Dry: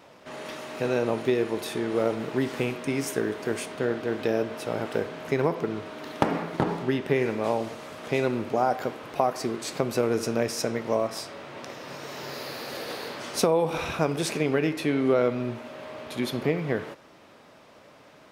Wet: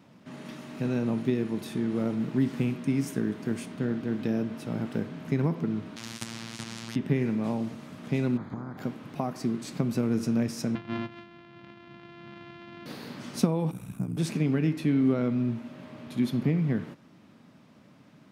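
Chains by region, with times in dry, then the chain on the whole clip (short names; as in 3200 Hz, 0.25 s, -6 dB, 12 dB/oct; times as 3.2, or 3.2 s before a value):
5.96–6.96 LPF 8700 Hz + robotiser 114 Hz + spectral compressor 10:1
8.36–8.77 spectral limiter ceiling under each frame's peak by 24 dB + compressor 12:1, threshold -28 dBFS + running mean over 16 samples
10.75–12.86 sample sorter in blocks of 128 samples + LPF 3400 Hz 24 dB/oct + low shelf 420 Hz -10 dB
13.71–14.17 EQ curve 110 Hz 0 dB, 490 Hz -11 dB, 5300 Hz -15 dB, 8200 Hz +8 dB + ring modulator 30 Hz
whole clip: HPF 110 Hz; resonant low shelf 320 Hz +12.5 dB, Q 1.5; gain -8 dB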